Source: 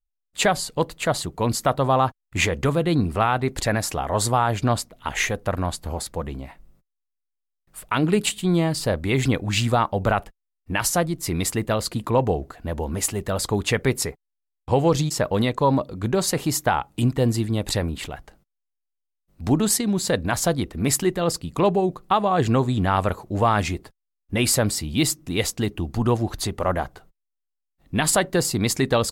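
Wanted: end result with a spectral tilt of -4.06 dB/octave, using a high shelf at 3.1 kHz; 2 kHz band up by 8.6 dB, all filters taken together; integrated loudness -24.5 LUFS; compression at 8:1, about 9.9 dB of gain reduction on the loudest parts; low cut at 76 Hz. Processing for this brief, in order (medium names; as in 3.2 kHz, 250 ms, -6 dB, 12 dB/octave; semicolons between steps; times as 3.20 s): high-pass 76 Hz; peaking EQ 2 kHz +8 dB; treble shelf 3.1 kHz +8 dB; compression 8:1, threshold -20 dBFS; trim +0.5 dB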